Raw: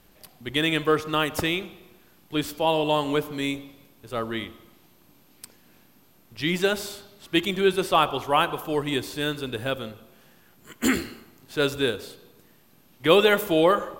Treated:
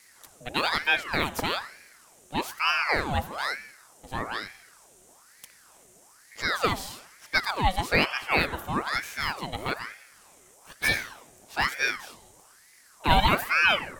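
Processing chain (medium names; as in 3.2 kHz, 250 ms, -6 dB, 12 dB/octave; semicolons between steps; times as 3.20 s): band noise 6–10 kHz -56 dBFS; ring modulator with a swept carrier 1.2 kHz, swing 70%, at 1.1 Hz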